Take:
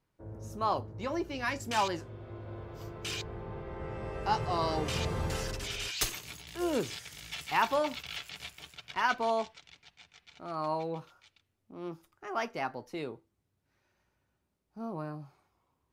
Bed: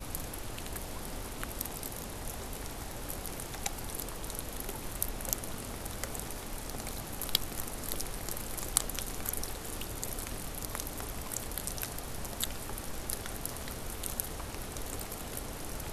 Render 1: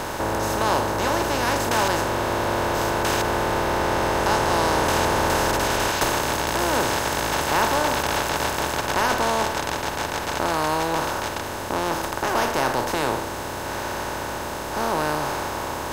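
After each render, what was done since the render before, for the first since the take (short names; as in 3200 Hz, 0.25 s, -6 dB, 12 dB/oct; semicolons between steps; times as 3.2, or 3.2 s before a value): per-bin compression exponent 0.2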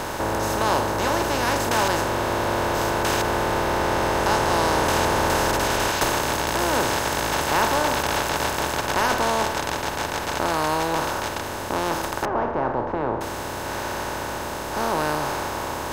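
12.25–13.21 LPF 1100 Hz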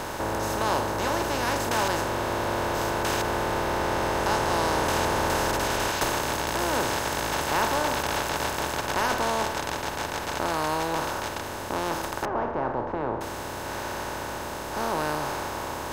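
gain -4 dB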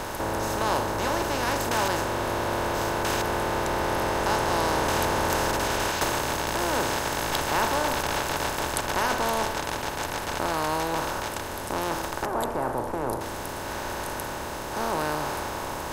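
add bed -5 dB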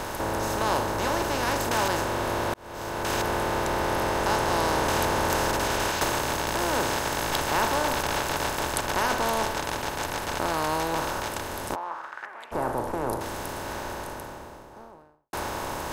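2.54–3.2 fade in; 11.74–12.51 band-pass 810 Hz -> 2600 Hz, Q 2.8; 13.4–15.33 studio fade out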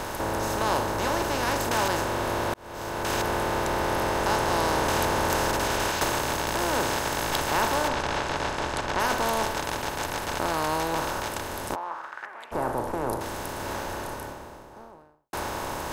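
7.88–9 air absorption 78 m; 13.57–14.33 doubler 30 ms -4.5 dB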